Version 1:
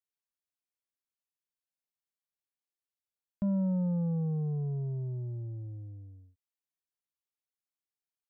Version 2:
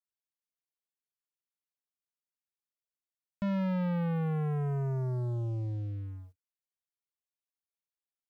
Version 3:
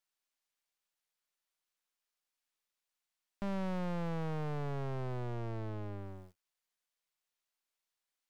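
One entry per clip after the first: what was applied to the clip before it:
leveller curve on the samples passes 3; level −2.5 dB
half-wave rectification; high-shelf EQ 3,100 Hz +11 dB; mid-hump overdrive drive 16 dB, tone 1,800 Hz, clips at −28.5 dBFS; level +1 dB

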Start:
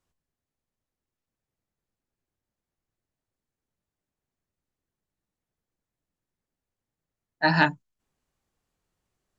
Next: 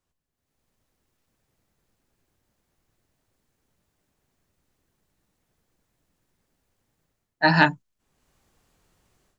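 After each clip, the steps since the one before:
automatic gain control gain up to 15 dB
level −1 dB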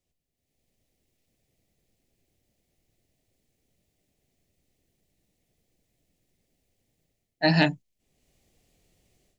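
flat-topped bell 1,200 Hz −13.5 dB 1.1 octaves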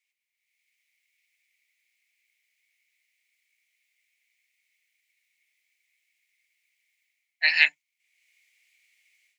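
high-pass with resonance 2,200 Hz, resonance Q 9.4
level −1 dB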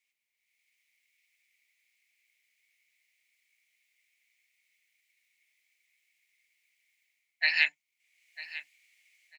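repeating echo 945 ms, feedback 19%, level −21 dB
downward compressor 1.5 to 1, threshold −30 dBFS, peak gain reduction 6.5 dB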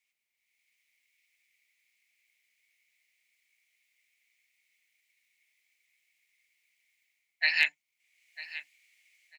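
hard clipping −11 dBFS, distortion −29 dB

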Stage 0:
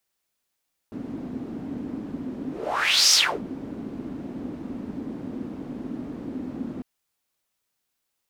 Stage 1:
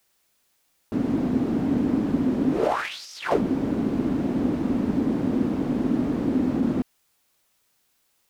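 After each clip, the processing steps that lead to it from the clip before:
compressor whose output falls as the input rises −29 dBFS, ratio −0.5
level +7.5 dB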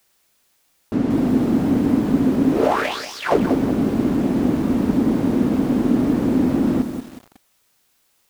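feedback echo at a low word length 185 ms, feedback 35%, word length 7 bits, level −8 dB
level +5 dB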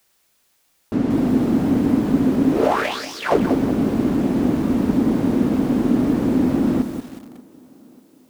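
tape delay 588 ms, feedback 57%, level −22.5 dB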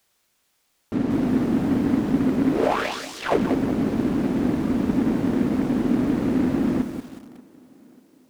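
short delay modulated by noise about 1,300 Hz, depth 0.037 ms
level −3.5 dB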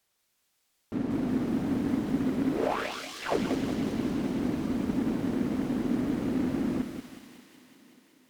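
delay with a high-pass on its return 186 ms, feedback 77%, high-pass 2,400 Hz, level −3.5 dB
level −7 dB
MP3 112 kbit/s 48,000 Hz

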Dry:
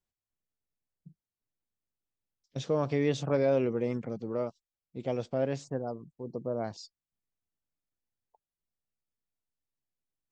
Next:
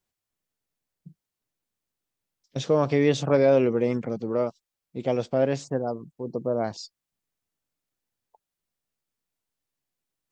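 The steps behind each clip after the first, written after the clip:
low-shelf EQ 91 Hz −7.5 dB
level +7.5 dB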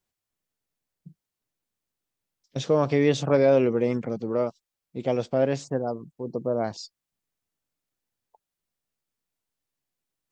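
no processing that can be heard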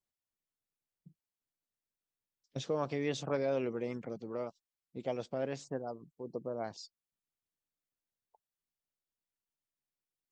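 harmonic and percussive parts rebalanced harmonic −6 dB
level −8.5 dB

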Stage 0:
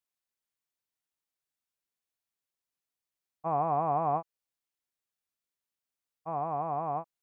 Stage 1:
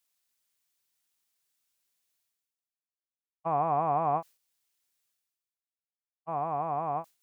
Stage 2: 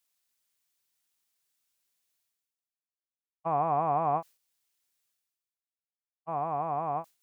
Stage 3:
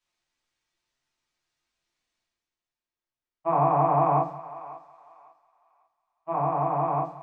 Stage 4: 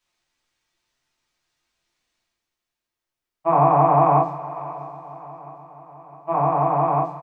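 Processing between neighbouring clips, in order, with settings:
downward expander −35 dBFS; high-shelf EQ 2,100 Hz +9.5 dB; reversed playback; upward compression, threshold −50 dBFS; reversed playback
no processing that can be heard
high-frequency loss of the air 120 metres; feedback echo with a high-pass in the loop 547 ms, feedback 32%, high-pass 890 Hz, level −14 dB; convolution reverb RT60 0.30 s, pre-delay 3 ms, DRR −5.5 dB
repeating echo 659 ms, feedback 59%, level −19 dB; level +6 dB

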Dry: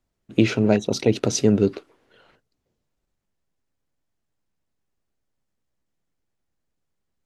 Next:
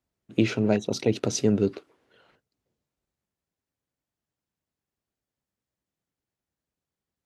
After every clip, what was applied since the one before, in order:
high-pass filter 57 Hz
level −4.5 dB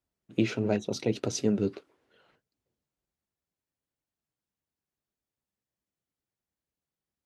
flanger 1.5 Hz, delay 1.9 ms, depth 4.9 ms, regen −65%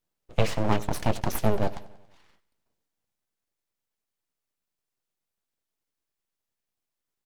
full-wave rectification
repeating echo 94 ms, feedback 56%, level −19 dB
level +5 dB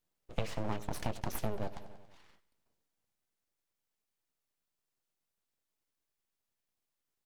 downward compressor 5 to 1, threshold −29 dBFS, peak gain reduction 13 dB
level −1.5 dB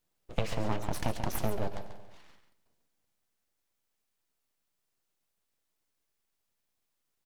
single-tap delay 139 ms −9.5 dB
level +4 dB

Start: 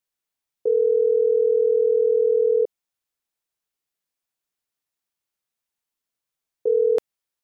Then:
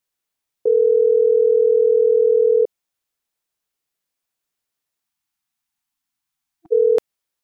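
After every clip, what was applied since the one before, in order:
time-frequency box erased 0:05.05–0:06.72, 330–680 Hz
level +4 dB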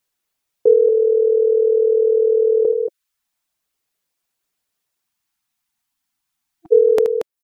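reverb reduction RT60 0.63 s
loudspeakers that aren't time-aligned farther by 26 metres −10 dB, 79 metres −8 dB
level +5 dB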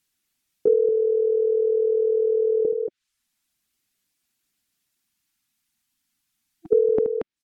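treble cut that deepens with the level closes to 710 Hz, closed at −13 dBFS
octave-band graphic EQ 250/500/1,000 Hz +6/−10/−6 dB
level +3 dB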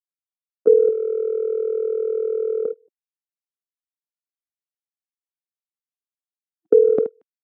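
noise gate −19 dBFS, range −37 dB
high-pass filter 170 Hz
level +5.5 dB

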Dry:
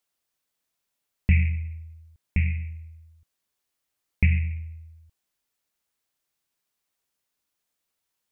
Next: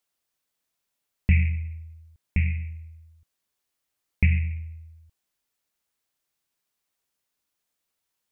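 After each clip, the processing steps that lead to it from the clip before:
no processing that can be heard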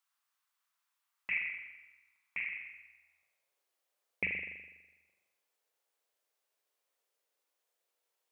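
high-pass filter sweep 1,100 Hz → 490 Hz, 0:02.52–0:03.55
spring reverb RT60 1.1 s, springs 41 ms, chirp 50 ms, DRR 3 dB
level −4.5 dB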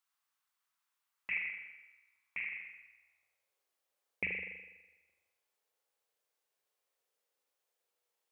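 feedback echo with a low-pass in the loop 80 ms, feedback 49%, low-pass 1,200 Hz, level −6.5 dB
level −2 dB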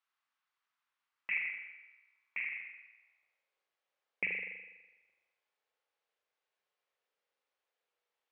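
band-pass filter 110–2,700 Hz
spectral tilt +2 dB per octave
level +1 dB

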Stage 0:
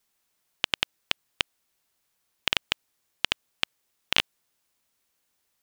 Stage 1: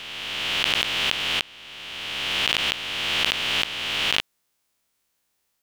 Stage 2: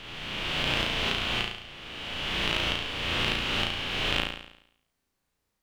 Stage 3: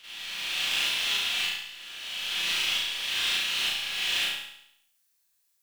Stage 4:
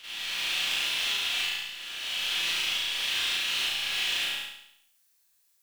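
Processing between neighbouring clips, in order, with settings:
peak hold with a rise ahead of every peak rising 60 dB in 2.42 s; level −2 dB
spectral tilt −2.5 dB per octave; on a send: flutter between parallel walls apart 6 metres, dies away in 0.73 s; on the sum: level −4.5 dB
first-order pre-emphasis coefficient 0.97; four-comb reverb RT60 0.48 s, combs from 32 ms, DRR −9.5 dB
downward compressor, threshold −29 dBFS, peak gain reduction 6 dB; mains-hum notches 50/100/150/200 Hz; level +3.5 dB

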